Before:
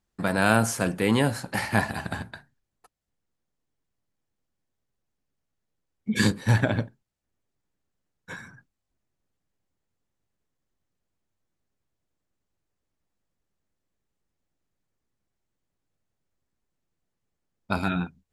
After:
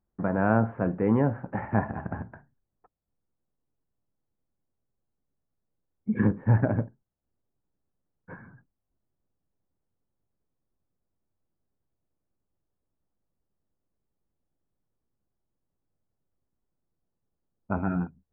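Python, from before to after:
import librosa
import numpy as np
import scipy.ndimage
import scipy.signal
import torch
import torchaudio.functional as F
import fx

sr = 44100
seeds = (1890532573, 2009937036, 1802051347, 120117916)

y = scipy.ndimage.gaussian_filter1d(x, 6.3, mode='constant')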